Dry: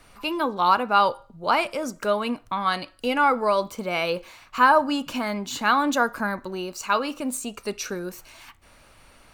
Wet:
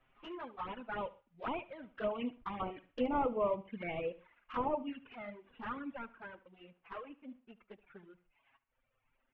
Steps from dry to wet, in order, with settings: CVSD coder 16 kbps; Doppler pass-by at 3.12 s, 9 m/s, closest 9.4 m; low-pass that closes with the level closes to 1.8 kHz, closed at -21.5 dBFS; touch-sensitive flanger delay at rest 8 ms, full sweep at -25 dBFS; multi-tap echo 73/124 ms -9/-16 dB; reverb removal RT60 1.5 s; trim -6 dB

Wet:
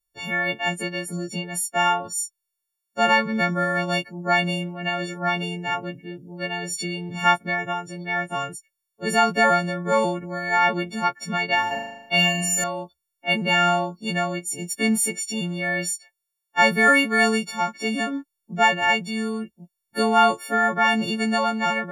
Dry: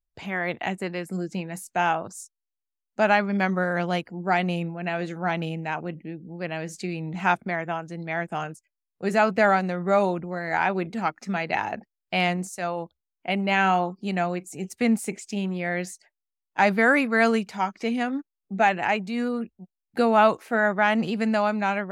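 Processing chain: partials quantised in pitch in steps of 4 st; 11.67–12.64 s: flutter echo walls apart 6.7 m, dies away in 0.89 s

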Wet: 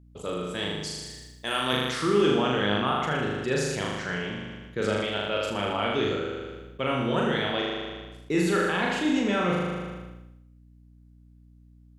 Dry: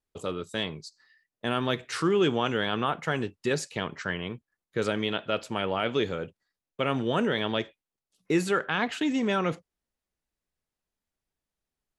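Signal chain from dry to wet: 0.83–1.73 s: RIAA curve recording; flutter echo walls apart 6.7 m, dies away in 1.1 s; hum 60 Hz, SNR 25 dB; decay stretcher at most 32 dB/s; trim -2.5 dB

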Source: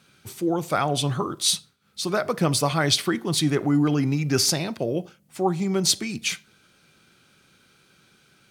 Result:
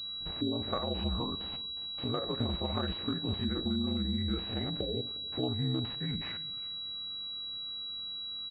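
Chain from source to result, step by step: spectrogram pixelated in time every 50 ms; compression 4:1, threshold -32 dBFS, peak gain reduction 12.5 dB; ring modulator 61 Hz; bass shelf 62 Hz +6.5 dB; band-stop 990 Hz, Q 9.2; delay 357 ms -23 dB; de-esser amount 90%; formant shift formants -3 st; on a send at -21 dB: reverberation RT60 1.5 s, pre-delay 7 ms; on the sum: class-D stage that switches slowly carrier 3.9 kHz; trim +3 dB

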